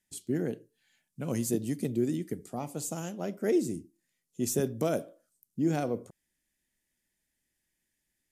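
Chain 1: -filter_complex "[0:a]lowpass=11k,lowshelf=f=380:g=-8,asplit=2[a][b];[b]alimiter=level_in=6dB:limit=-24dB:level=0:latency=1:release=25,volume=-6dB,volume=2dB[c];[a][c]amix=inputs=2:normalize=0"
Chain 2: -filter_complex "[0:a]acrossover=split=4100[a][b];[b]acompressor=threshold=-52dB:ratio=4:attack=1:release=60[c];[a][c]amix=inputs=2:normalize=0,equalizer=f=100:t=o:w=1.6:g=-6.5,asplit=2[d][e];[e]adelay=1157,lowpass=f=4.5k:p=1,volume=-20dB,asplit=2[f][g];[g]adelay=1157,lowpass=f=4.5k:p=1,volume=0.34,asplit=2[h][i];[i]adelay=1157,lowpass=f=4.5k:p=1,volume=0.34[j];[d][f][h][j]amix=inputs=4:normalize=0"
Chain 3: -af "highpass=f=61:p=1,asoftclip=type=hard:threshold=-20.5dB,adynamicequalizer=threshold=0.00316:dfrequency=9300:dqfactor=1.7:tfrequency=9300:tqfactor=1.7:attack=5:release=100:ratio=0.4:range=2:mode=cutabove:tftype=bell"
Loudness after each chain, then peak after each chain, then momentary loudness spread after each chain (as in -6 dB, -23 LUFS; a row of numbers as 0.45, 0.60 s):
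-31.5, -34.0, -32.5 LUFS; -16.5, -18.0, -20.5 dBFS; 10, 20, 11 LU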